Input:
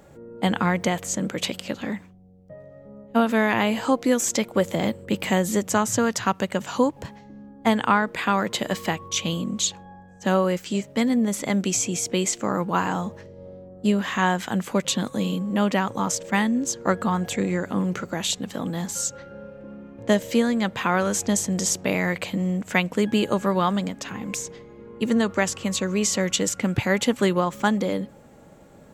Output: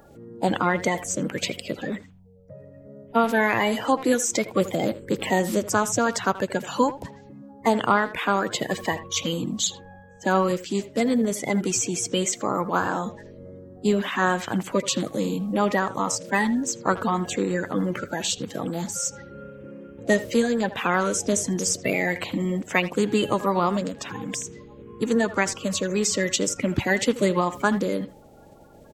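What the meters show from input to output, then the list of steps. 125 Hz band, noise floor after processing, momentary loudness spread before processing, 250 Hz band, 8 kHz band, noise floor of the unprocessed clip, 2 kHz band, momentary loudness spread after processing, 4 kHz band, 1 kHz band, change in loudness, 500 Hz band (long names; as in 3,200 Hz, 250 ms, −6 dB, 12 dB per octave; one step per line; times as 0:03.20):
−2.5 dB, −49 dBFS, 9 LU, −2.0 dB, −0.5 dB, −48 dBFS, +1.0 dB, 9 LU, −1.0 dB, +0.5 dB, −0.5 dB, +0.5 dB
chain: spectral magnitudes quantised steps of 30 dB
far-end echo of a speakerphone 80 ms, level −14 dB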